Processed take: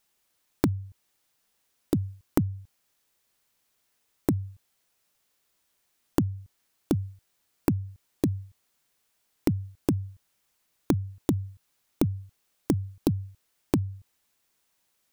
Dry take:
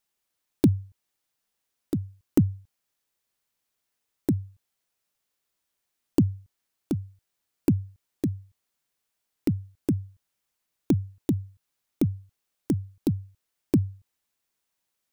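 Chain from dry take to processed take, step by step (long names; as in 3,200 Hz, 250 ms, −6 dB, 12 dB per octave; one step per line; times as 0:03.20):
downward compressor 12 to 1, threshold −28 dBFS, peak gain reduction 14.5 dB
level +7.5 dB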